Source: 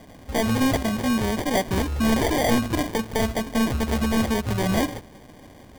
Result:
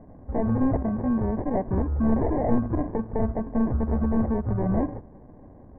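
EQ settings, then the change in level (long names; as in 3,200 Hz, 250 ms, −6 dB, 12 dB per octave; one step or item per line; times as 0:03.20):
Gaussian smoothing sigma 7.6 samples
low-shelf EQ 67 Hz +6 dB
−1.5 dB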